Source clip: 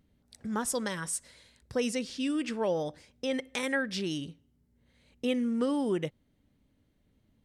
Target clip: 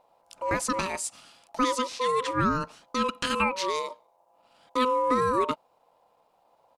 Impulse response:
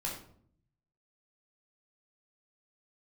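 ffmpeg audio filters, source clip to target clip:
-filter_complex "[0:a]aeval=exprs='val(0)*sin(2*PI*760*n/s)':c=same,atempo=1.1,acrossover=split=8400[s0][s1];[s1]acompressor=threshold=0.00316:ratio=4:attack=1:release=60[s2];[s0][s2]amix=inputs=2:normalize=0,volume=2.37"

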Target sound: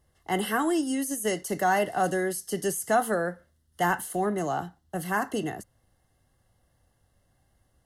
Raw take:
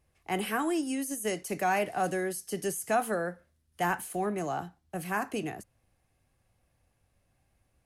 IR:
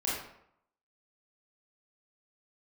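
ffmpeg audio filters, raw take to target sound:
-af "asuperstop=centerf=2400:order=20:qfactor=4.7,volume=1.58"

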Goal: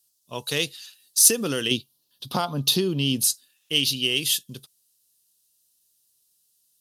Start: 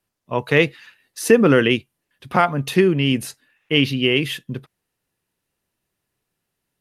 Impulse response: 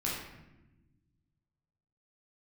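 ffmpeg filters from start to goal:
-filter_complex "[0:a]asettb=1/sr,asplit=3[s0][s1][s2];[s0]atrim=end=1.714[s3];[s1]atrim=start=1.71:end=3.24,asetpts=PTS-STARTPTS,afade=t=in:d=0.004:c=qsin,afade=t=out:st=1.526:d=0.004:c=qsin,equalizer=f=125:t=o:w=1:g=8,equalizer=f=250:t=o:w=1:g=7,equalizer=f=500:t=o:w=1:g=4,equalizer=f=1000:t=o:w=1:g=8,equalizer=f=2000:t=o:w=1:g=-5,equalizer=f=4000:t=o:w=1:g=7,equalizer=f=8000:t=o:w=1:g=-10[s4];[s2]atrim=start=3.236[s5];[s3][s4]acrossfade=d=0.004:c1=hsin:c2=qsin[s6];[s6][s5]acrossfade=d=0.004:c1=qsin:c2=hsin,acompressor=threshold=0.251:ratio=2,aexciter=amount=9.7:drive=8.5:freq=3300,volume=0.266"

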